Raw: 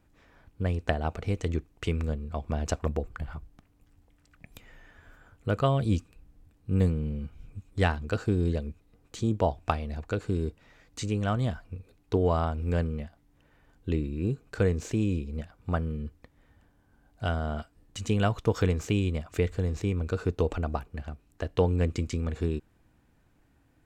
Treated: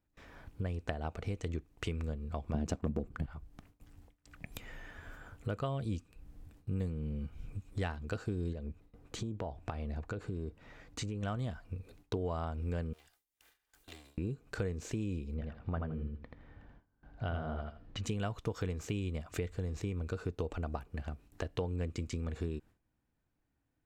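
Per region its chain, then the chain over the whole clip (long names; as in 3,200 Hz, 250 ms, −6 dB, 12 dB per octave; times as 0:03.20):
0:02.54–0:03.26: leveller curve on the samples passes 1 + parametric band 210 Hz +13.5 dB 1.9 octaves
0:08.53–0:11.23: high-shelf EQ 2,900 Hz −8 dB + downward compressor 3 to 1, threshold −32 dBFS
0:12.93–0:14.18: lower of the sound and its delayed copy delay 2.5 ms + first-order pre-emphasis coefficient 0.97 + multiband upward and downward compressor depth 70%
0:15.34–0:18.04: high-frequency loss of the air 230 metres + repeating echo 82 ms, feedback 16%, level −4 dB
whole clip: noise gate with hold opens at −52 dBFS; downward compressor 3 to 1, threshold −43 dBFS; level +4.5 dB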